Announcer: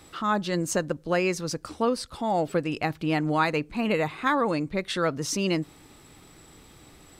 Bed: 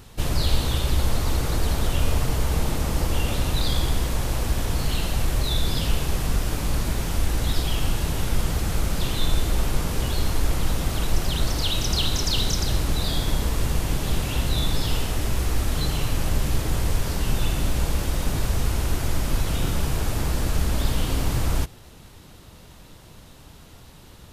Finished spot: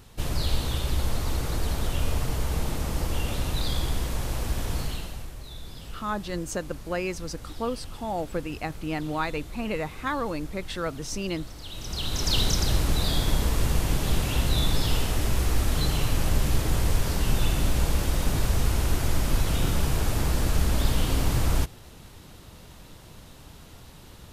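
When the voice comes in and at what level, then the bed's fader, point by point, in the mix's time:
5.80 s, -5.0 dB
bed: 4.79 s -4.5 dB
5.35 s -17.5 dB
11.60 s -17.5 dB
12.33 s -0.5 dB

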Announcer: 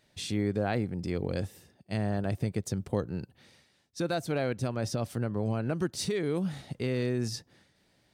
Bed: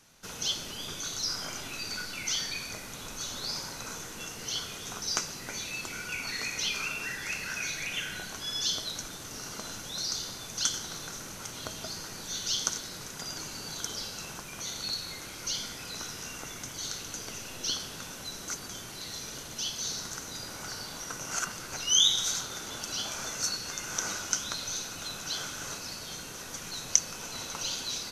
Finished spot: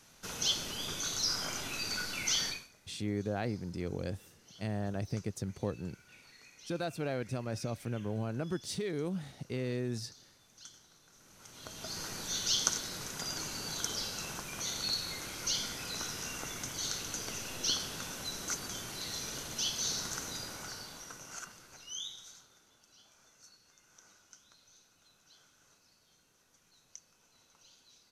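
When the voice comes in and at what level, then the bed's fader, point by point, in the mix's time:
2.70 s, -5.5 dB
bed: 2.49 s 0 dB
2.72 s -23.5 dB
11.06 s -23.5 dB
12.02 s 0 dB
20.26 s 0 dB
22.78 s -28 dB

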